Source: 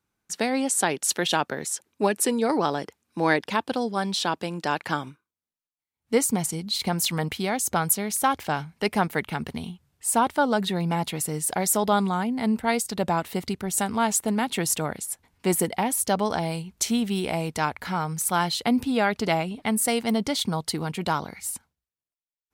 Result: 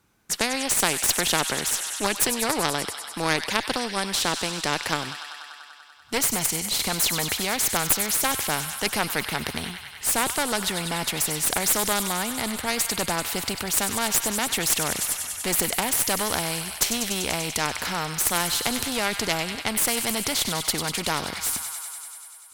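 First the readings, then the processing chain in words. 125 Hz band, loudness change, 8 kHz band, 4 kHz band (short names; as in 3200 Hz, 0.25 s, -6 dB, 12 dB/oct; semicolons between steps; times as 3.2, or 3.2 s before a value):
-4.0 dB, +1.5 dB, +4.5 dB, +6.0 dB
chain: thin delay 97 ms, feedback 77%, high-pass 2000 Hz, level -12 dB; added harmonics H 2 -8 dB, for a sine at -7.5 dBFS; spectral compressor 2:1; gain +1.5 dB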